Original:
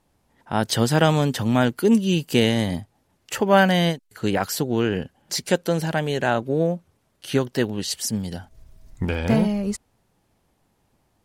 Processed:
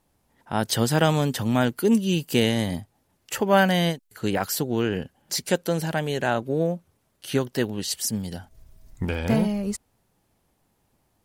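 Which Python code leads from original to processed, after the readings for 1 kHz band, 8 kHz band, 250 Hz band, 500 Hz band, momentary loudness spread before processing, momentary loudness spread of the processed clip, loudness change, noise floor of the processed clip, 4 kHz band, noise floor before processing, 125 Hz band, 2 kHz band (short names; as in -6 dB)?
-2.5 dB, 0.0 dB, -2.5 dB, -2.5 dB, 11 LU, 11 LU, -2.5 dB, -70 dBFS, -2.0 dB, -68 dBFS, -2.5 dB, -2.5 dB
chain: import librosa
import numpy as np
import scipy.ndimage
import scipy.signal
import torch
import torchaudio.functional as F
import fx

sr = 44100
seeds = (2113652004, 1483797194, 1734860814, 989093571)

y = fx.high_shelf(x, sr, hz=11000.0, db=9.0)
y = F.gain(torch.from_numpy(y), -2.5).numpy()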